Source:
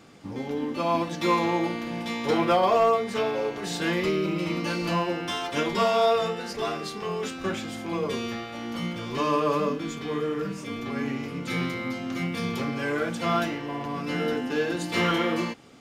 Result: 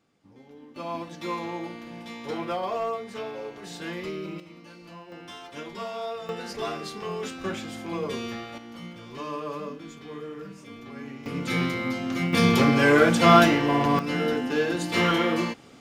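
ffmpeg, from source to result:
ffmpeg -i in.wav -af "asetnsamples=nb_out_samples=441:pad=0,asendcmd='0.76 volume volume -8.5dB;4.4 volume volume -19dB;5.12 volume volume -12dB;6.29 volume volume -2dB;8.58 volume volume -9.5dB;11.26 volume volume 2.5dB;12.33 volume volume 10dB;13.99 volume volume 1.5dB',volume=-18.5dB" out.wav

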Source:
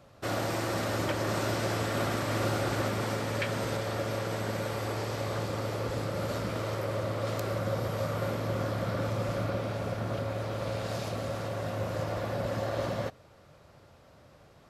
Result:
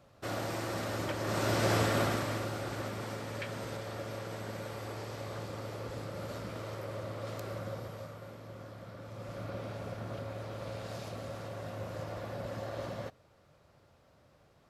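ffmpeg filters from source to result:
ffmpeg -i in.wav -af "volume=11.5dB,afade=type=in:start_time=1.21:duration=0.55:silence=0.398107,afade=type=out:start_time=1.76:duration=0.7:silence=0.281838,afade=type=out:start_time=7.6:duration=0.6:silence=0.398107,afade=type=in:start_time=9.05:duration=0.58:silence=0.375837" out.wav

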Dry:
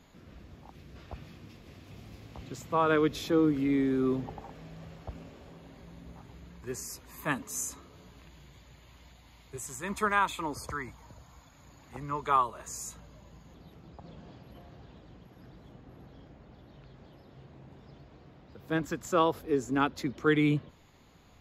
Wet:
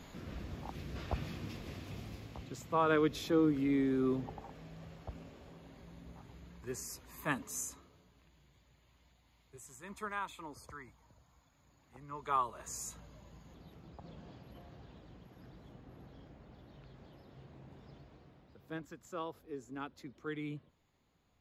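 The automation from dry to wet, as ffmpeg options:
ffmpeg -i in.wav -af "volume=16.5dB,afade=type=out:start_time=1.56:duration=0.93:silence=0.298538,afade=type=out:start_time=7.48:duration=0.57:silence=0.354813,afade=type=in:start_time=12.07:duration=0.65:silence=0.316228,afade=type=out:start_time=17.94:duration=0.93:silence=0.223872" out.wav

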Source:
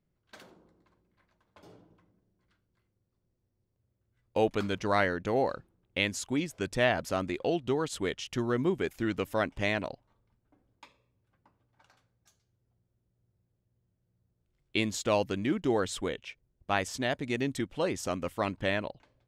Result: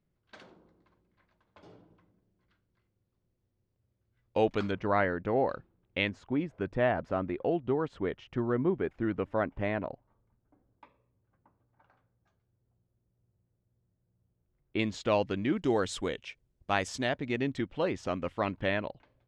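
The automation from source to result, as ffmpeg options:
ffmpeg -i in.wav -af "asetnsamples=nb_out_samples=441:pad=0,asendcmd='4.71 lowpass f 1900;5.49 lowpass f 3200;6.09 lowpass f 1500;14.79 lowpass f 3700;15.57 lowpass f 8300;17.09 lowpass f 3400',lowpass=4600" out.wav

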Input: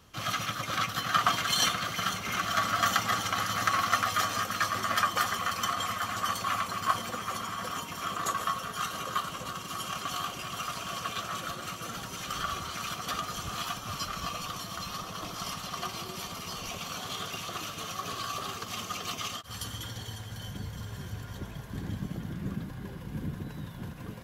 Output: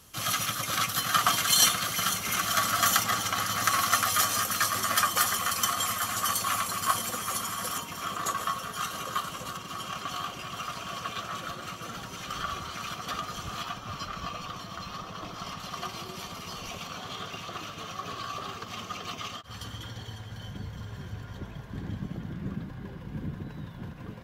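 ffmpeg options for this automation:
ffmpeg -i in.wav -af "asetnsamples=nb_out_samples=441:pad=0,asendcmd='3.04 equalizer g 8;3.64 equalizer g 14.5;7.78 equalizer g 3;9.57 equalizer g -5.5;13.63 equalizer g -13.5;15.6 equalizer g -5;16.87 equalizer g -11.5',equalizer=frequency=11000:width_type=o:width=1.5:gain=14.5" out.wav

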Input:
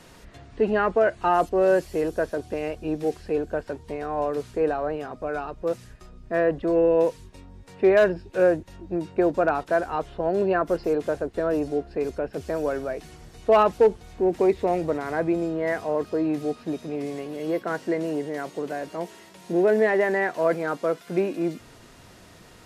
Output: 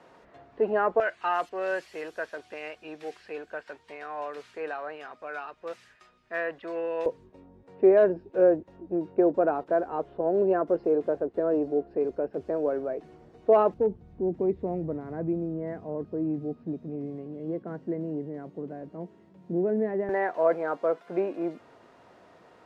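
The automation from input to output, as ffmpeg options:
ffmpeg -i in.wav -af "asetnsamples=nb_out_samples=441:pad=0,asendcmd='1 bandpass f 2100;7.06 bandpass f 420;13.74 bandpass f 160;20.09 bandpass f 700',bandpass=frequency=720:width_type=q:width=0.9:csg=0" out.wav

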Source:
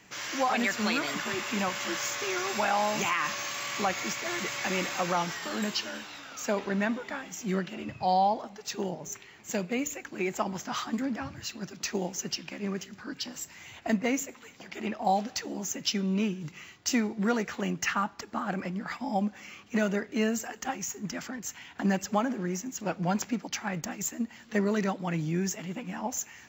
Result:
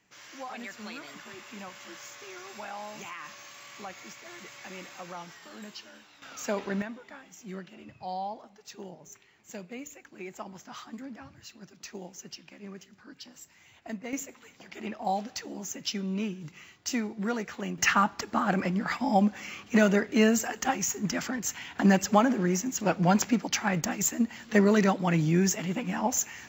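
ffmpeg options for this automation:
ffmpeg -i in.wav -af "asetnsamples=nb_out_samples=441:pad=0,asendcmd='6.22 volume volume -1.5dB;6.82 volume volume -10.5dB;14.13 volume volume -3.5dB;17.78 volume volume 5.5dB',volume=-13dB" out.wav

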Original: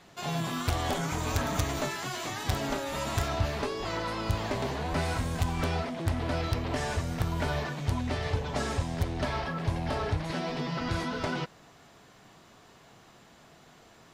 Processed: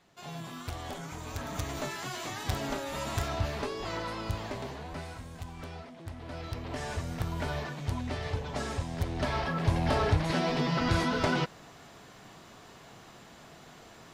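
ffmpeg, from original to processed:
ffmpeg -i in.wav -af "volume=14.5dB,afade=type=in:start_time=1.32:duration=0.7:silence=0.446684,afade=type=out:start_time=3.96:duration=1.2:silence=0.298538,afade=type=in:start_time=6.18:duration=0.87:silence=0.334965,afade=type=in:start_time=8.91:duration=0.97:silence=0.421697" out.wav

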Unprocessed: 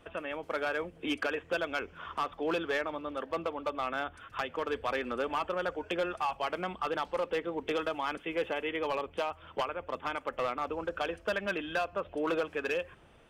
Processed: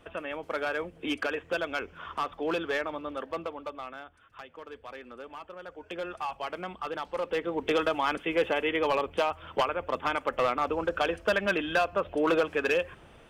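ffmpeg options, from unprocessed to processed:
ffmpeg -i in.wav -af "volume=18.5dB,afade=type=out:start_time=3.1:duration=0.95:silence=0.237137,afade=type=in:start_time=5.65:duration=0.52:silence=0.354813,afade=type=in:start_time=7.05:duration=0.72:silence=0.398107" out.wav

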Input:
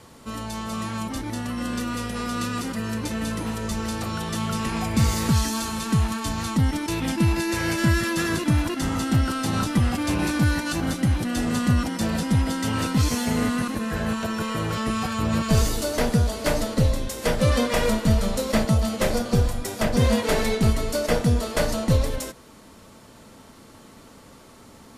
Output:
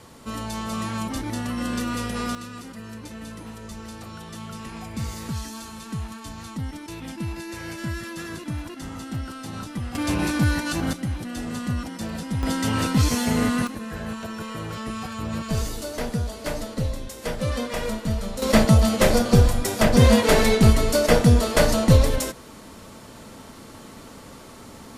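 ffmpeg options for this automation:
ffmpeg -i in.wav -af "asetnsamples=nb_out_samples=441:pad=0,asendcmd='2.35 volume volume -10dB;9.95 volume volume 0dB;10.93 volume volume -6.5dB;12.43 volume volume 1.5dB;13.67 volume volume -6dB;18.42 volume volume 5dB',volume=1dB" out.wav

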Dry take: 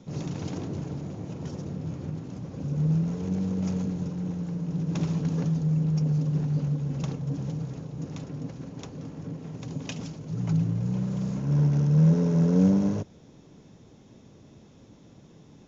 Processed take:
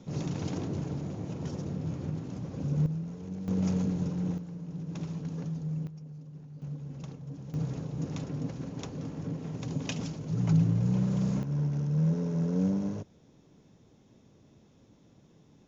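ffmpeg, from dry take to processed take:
ffmpeg -i in.wav -af "asetnsamples=nb_out_samples=441:pad=0,asendcmd='2.86 volume volume -10dB;3.48 volume volume 0dB;4.38 volume volume -9dB;5.87 volume volume -20dB;6.62 volume volume -11dB;7.54 volume volume 1dB;11.43 volume volume -7.5dB',volume=-0.5dB" out.wav

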